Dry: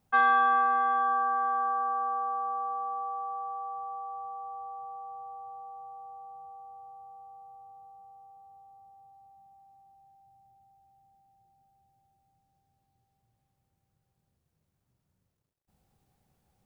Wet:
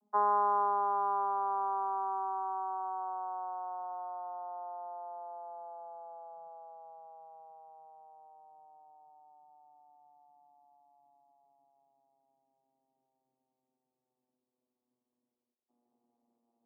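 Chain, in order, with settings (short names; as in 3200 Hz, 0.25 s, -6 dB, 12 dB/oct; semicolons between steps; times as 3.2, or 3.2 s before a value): vocoder on a gliding note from G#3, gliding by -10 st; elliptic band-pass 230–1100 Hz, stop band 40 dB; gain -2.5 dB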